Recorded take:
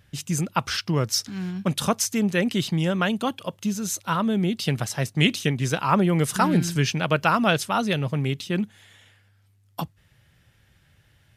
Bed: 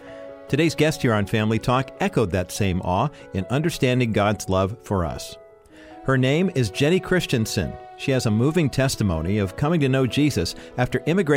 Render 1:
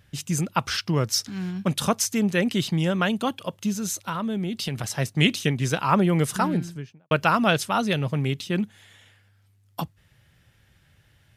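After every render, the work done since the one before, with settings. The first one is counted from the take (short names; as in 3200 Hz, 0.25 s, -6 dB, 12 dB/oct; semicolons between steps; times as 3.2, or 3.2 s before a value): 3.9–4.84 compressor, threshold -24 dBFS; 6.14–7.11 studio fade out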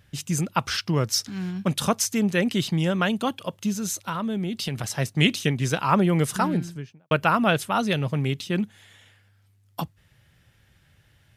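7.16–7.76 bell 5400 Hz -7.5 dB 0.96 oct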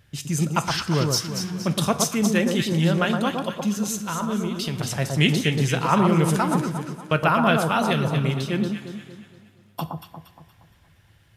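echo with dull and thin repeats by turns 0.117 s, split 1300 Hz, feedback 63%, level -3 dB; two-slope reverb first 0.5 s, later 3.7 s, from -20 dB, DRR 11 dB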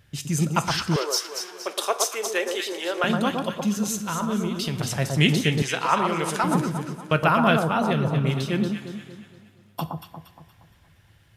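0.96–3.04 elliptic high-pass 380 Hz, stop band 70 dB; 5.62–6.44 weighting filter A; 7.59–8.27 high shelf 2100 Hz -8.5 dB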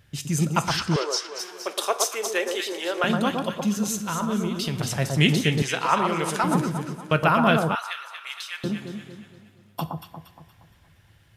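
0.79–1.38 LPF 11000 Hz -> 4700 Hz; 7.75–8.64 HPF 1200 Hz 24 dB/oct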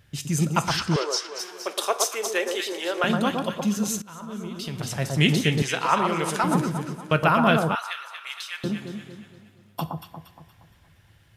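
4.02–5.35 fade in, from -17.5 dB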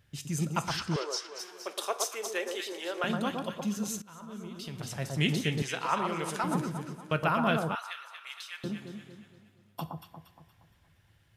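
gain -8 dB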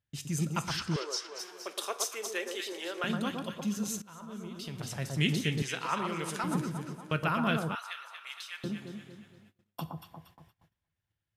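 gate -59 dBFS, range -22 dB; dynamic EQ 720 Hz, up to -6 dB, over -43 dBFS, Q 1.1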